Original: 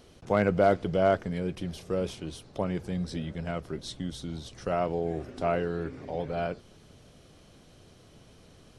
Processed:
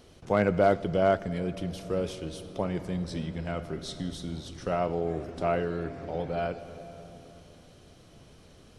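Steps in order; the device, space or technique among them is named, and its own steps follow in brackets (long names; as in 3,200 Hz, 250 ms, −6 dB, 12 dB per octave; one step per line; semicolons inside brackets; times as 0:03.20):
compressed reverb return (on a send at −7.5 dB: convolution reverb RT60 2.8 s, pre-delay 34 ms + downward compressor, threshold −31 dBFS, peak gain reduction 13.5 dB)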